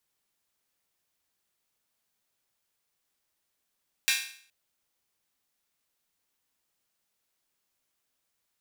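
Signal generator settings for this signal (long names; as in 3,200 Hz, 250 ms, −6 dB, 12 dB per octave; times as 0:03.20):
open synth hi-hat length 0.42 s, high-pass 2,100 Hz, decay 0.53 s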